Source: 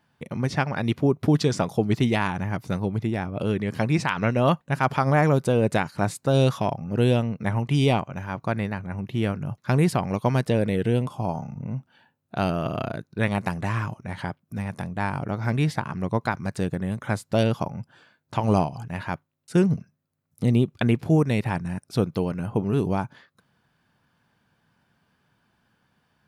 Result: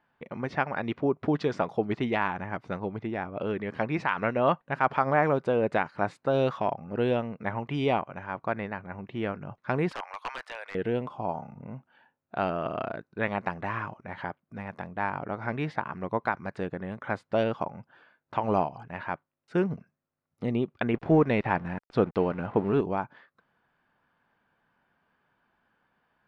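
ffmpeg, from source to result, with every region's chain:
-filter_complex "[0:a]asettb=1/sr,asplit=3[a][b][c];[a]atrim=end=9.914[d];[b]atrim=start=9.91:end=10.75,asetpts=PTS-STARTPTS,afade=t=in:d=0.004:c=qsin,afade=t=out:st=0.836:d=0.004:c=qsin,highpass=f=880:w=0.5412,highpass=f=880:w=1.3066,highshelf=f=6.3k:g=10,aeval=exprs='(mod(12.6*val(0)+1,2)-1)/12.6':c=same[e];[c]atrim=start=10.746[f];[d][e]acrossfade=d=0.004:c1=hsin:c2=qsin[g];[g][f]acrossfade=d=0.004:c1=qsin:c2=hsin,asettb=1/sr,asplit=3[h][i][j];[h]atrim=end=20.944[k];[i]atrim=start=20.94:end=22.81,asetpts=PTS-STARTPTS,afade=t=in:d=0.004:c=qsin,afade=t=out:st=1.866:d=0.004:c=qsin,highshelf=f=8.5k:g=-11,acontrast=39,aeval=exprs='sgn(val(0))*max(abs(val(0))-0.00794,0)':c=same[l];[j]atrim=start=22.806[m];[k][l]acrossfade=d=0.004:c1=hsin:c2=qsin[n];[n][m]acrossfade=d=0.004:c1=qsin:c2=hsin,lowpass=2.1k,equalizer=f=110:w=0.53:g=-13"

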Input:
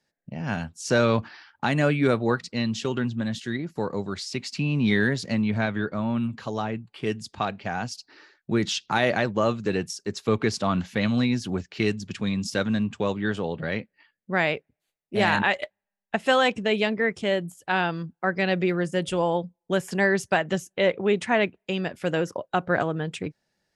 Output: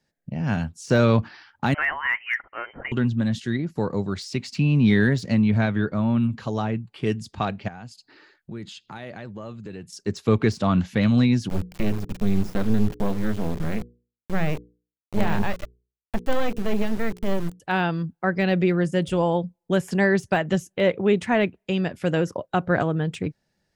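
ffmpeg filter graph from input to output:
-filter_complex "[0:a]asettb=1/sr,asplit=3[a][b][c];[a]atrim=end=1.744[d];[b]atrim=start=1.74:end=2.92,asetpts=PTS-STARTPTS,afade=t=in:d=0.004:c=qsin,afade=t=out:st=1.176:d=0.004:c=qsin,highpass=f=1.3k:t=q:w=3.6,lowpass=f=2.8k:t=q:w=0.5098,lowpass=f=2.8k:t=q:w=0.6013,lowpass=f=2.8k:t=q:w=0.9,lowpass=f=2.8k:t=q:w=2.563,afreqshift=-3300[e];[c]atrim=start=2.916[f];[d][e]acrossfade=d=0.004:c1=hsin:c2=qsin[g];[g][f]acrossfade=d=0.004:c1=qsin:c2=hsin,asettb=1/sr,asplit=3[h][i][j];[h]atrim=end=7.684[k];[i]atrim=start=7.68:end=9.93,asetpts=PTS-STARTPTS,afade=t=in:d=0.004:c=qsin,afade=t=out:st=2.246:d=0.004:c=qsin,bandreject=f=5.7k:w=5.2,acompressor=threshold=-49dB:ratio=2:attack=3.2:release=140:knee=1:detection=peak[l];[j]atrim=start=9.926[m];[k][l]acrossfade=d=0.004:c1=hsin:c2=qsin[n];[n][m]acrossfade=d=0.004:c1=qsin:c2=hsin,asettb=1/sr,asplit=3[o][p][q];[o]atrim=end=11.494[r];[p]atrim=start=11.49:end=17.6,asetpts=PTS-STARTPTS,afade=t=in:d=0.004:c=qsin,afade=t=out:st=6.106:d=0.004:c=qsin,adynamicequalizer=threshold=0.01:dfrequency=160:dqfactor=1.5:tfrequency=160:tqfactor=1.5:attack=5:release=100:ratio=0.375:range=3:mode=boostabove:tftype=bell,acrusher=bits=3:dc=4:mix=0:aa=0.000001,bandreject=f=60:t=h:w=6,bandreject=f=120:t=h:w=6,bandreject=f=180:t=h:w=6,bandreject=f=240:t=h:w=6,bandreject=f=300:t=h:w=6,bandreject=f=360:t=h:w=6,bandreject=f=420:t=h:w=6,bandreject=f=480:t=h:w=6[s];[q]atrim=start=17.596[t];[r][s]acrossfade=d=0.004:c1=hsin:c2=qsin[u];[u][t]acrossfade=d=0.004:c1=qsin:c2=hsin,deesser=0.8,lowshelf=f=230:g=9"

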